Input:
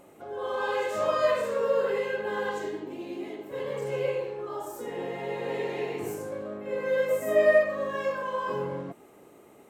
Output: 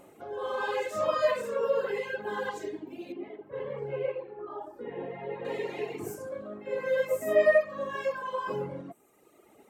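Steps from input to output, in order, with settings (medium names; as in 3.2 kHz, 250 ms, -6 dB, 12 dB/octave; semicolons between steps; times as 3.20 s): reverb removal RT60 1.4 s; 3.12–5.45 s: distance through air 460 m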